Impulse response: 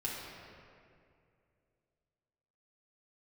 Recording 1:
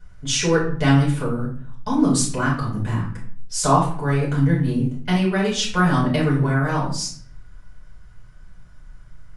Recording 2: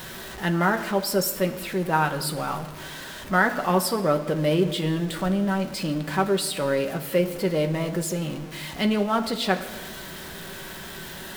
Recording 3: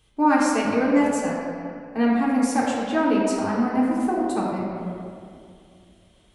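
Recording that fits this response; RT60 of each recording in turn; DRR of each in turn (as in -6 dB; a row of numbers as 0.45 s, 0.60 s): 3; 0.50 s, 1.4 s, 2.4 s; -5.5 dB, 5.0 dB, -6.5 dB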